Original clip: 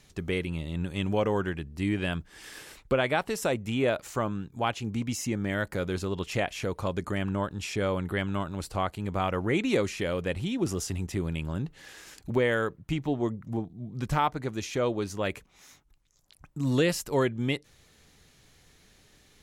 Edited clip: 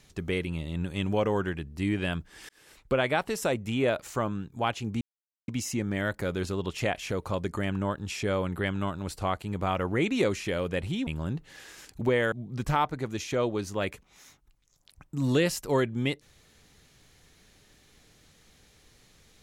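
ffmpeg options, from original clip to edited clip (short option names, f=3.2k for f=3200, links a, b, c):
-filter_complex "[0:a]asplit=5[a][b][c][d][e];[a]atrim=end=2.49,asetpts=PTS-STARTPTS,afade=t=out:st=2.486:d=0.004:c=hsin[f];[b]atrim=start=2.49:end=5.01,asetpts=PTS-STARTPTS,afade=t=in:d=0.49,afade=t=out:st=2.516:d=0.004:c=hsin,apad=pad_dur=0.47[g];[c]atrim=start=5.01:end=10.602,asetpts=PTS-STARTPTS,afade=t=in:d=0.004:c=hsin[h];[d]atrim=start=11.358:end=12.612[i];[e]atrim=start=13.748[j];[f][g][h]concat=n=3:v=0:a=1[k];[k][i]acrossfade=d=0.004:c1=hsin:c2=hsin[l];[l][j]acrossfade=d=0.004:c1=hsin:c2=hsin"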